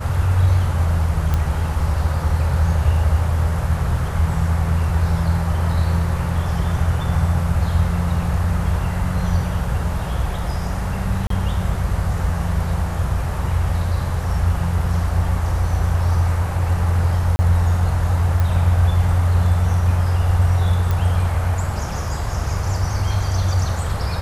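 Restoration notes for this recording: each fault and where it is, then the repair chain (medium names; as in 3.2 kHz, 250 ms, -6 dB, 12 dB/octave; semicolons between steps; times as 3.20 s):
1.34 s: pop -8 dBFS
11.27–11.30 s: dropout 33 ms
17.36–17.39 s: dropout 30 ms
18.40 s: pop
20.91 s: pop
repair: de-click; interpolate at 11.27 s, 33 ms; interpolate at 17.36 s, 30 ms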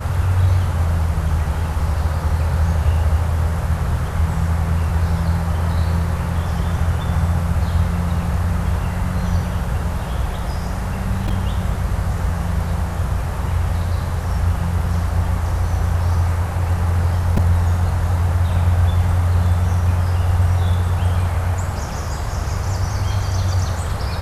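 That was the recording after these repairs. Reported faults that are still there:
nothing left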